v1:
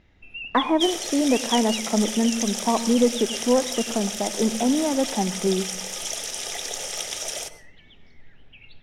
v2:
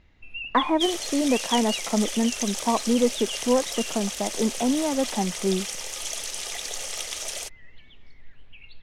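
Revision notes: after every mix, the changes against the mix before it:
reverb: off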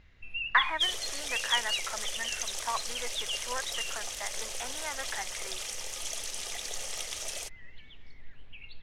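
speech: add resonant high-pass 1700 Hz, resonance Q 2.4; second sound -5.0 dB

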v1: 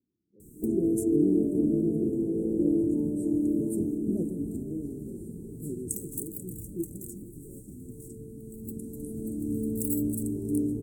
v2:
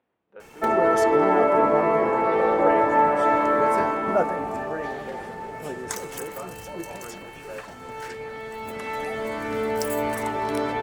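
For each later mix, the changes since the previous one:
background -4.0 dB; master: remove Chebyshev band-stop 340–8200 Hz, order 4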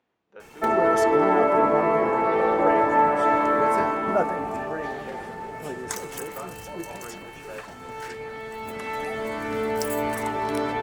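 speech: remove air absorption 230 m; master: add bell 540 Hz -3 dB 0.29 oct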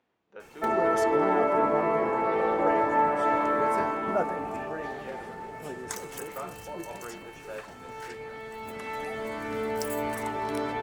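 background -4.5 dB

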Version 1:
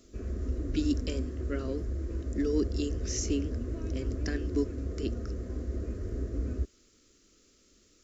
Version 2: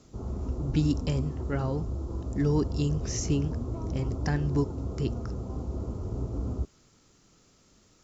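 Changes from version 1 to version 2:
background: add rippled Chebyshev low-pass 1400 Hz, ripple 3 dB; master: remove fixed phaser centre 350 Hz, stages 4

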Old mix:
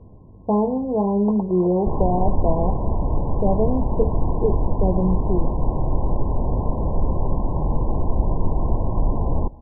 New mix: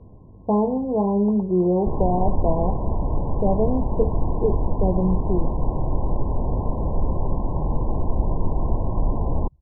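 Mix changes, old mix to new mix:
first sound -8.0 dB; reverb: off

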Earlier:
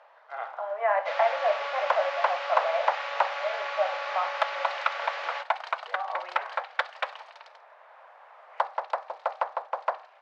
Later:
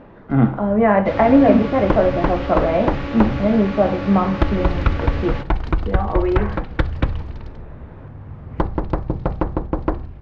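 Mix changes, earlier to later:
speech +7.0 dB; master: remove steep high-pass 600 Hz 48 dB/oct

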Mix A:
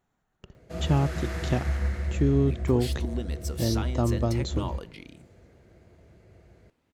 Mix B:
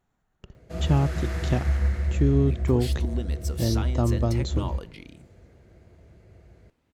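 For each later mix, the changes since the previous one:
master: add low shelf 92 Hz +6.5 dB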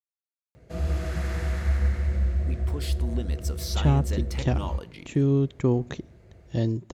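speech: entry +2.95 s

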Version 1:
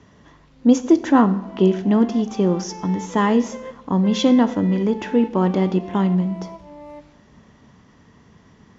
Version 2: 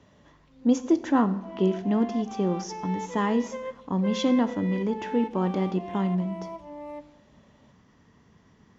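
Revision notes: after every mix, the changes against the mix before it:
speech -7.5 dB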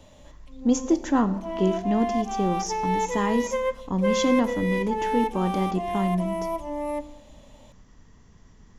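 background +9.5 dB; master: remove BPF 120–4300 Hz

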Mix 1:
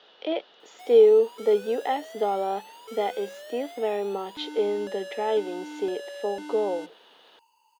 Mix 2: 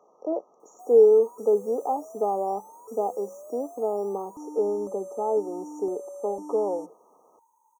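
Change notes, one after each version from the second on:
master: add brick-wall FIR band-stop 1300–5600 Hz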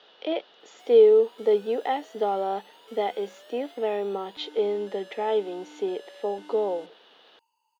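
background -9.5 dB; master: remove brick-wall FIR band-stop 1300–5600 Hz

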